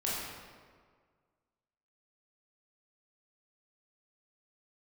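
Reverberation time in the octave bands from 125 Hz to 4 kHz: 1.9, 1.7, 1.8, 1.7, 1.4, 1.1 s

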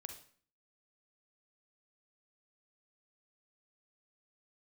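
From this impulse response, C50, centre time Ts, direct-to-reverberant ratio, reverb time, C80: 7.5 dB, 16 ms, 5.5 dB, 0.50 s, 12.5 dB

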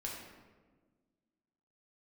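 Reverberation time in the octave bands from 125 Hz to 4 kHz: 1.8, 2.1, 1.6, 1.2, 1.0, 0.80 s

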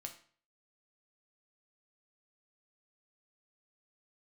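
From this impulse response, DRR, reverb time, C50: 3.5 dB, 0.45 s, 11.0 dB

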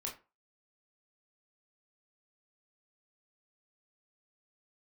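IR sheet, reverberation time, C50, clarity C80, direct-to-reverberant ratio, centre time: 0.30 s, 10.0 dB, 16.5 dB, -1.5 dB, 21 ms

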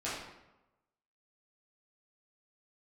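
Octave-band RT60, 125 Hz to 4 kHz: 1.0, 1.0, 1.0, 1.0, 0.80, 0.65 s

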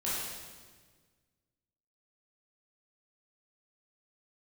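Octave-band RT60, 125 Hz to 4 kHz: 2.1, 1.9, 1.6, 1.4, 1.4, 1.3 s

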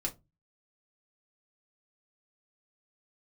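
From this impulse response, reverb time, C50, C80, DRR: not exponential, 19.0 dB, 27.0 dB, -0.5 dB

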